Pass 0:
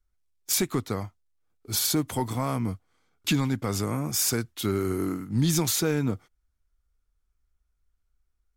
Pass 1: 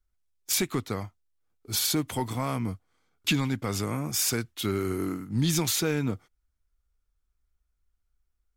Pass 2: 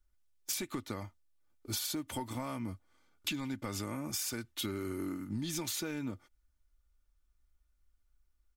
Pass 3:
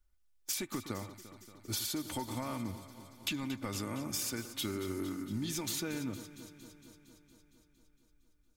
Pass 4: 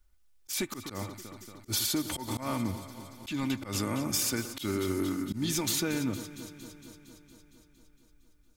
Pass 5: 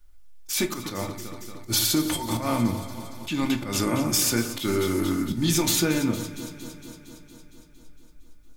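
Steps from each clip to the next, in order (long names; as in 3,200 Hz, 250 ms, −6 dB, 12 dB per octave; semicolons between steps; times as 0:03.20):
dynamic equaliser 2,700 Hz, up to +5 dB, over −45 dBFS, Q 1.1; level −2 dB
comb filter 3.4 ms, depth 45%; downward compressor 10 to 1, threshold −34 dBFS, peak gain reduction 14 dB
delay that swaps between a low-pass and a high-pass 115 ms, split 1,700 Hz, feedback 83%, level −12 dB
volume swells 112 ms; level +7 dB
rectangular room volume 210 cubic metres, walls furnished, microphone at 0.86 metres; level +6 dB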